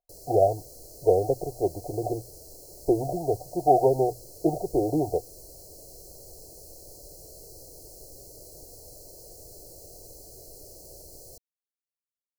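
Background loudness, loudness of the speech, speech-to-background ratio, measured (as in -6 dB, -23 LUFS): -45.5 LUFS, -26.0 LUFS, 19.5 dB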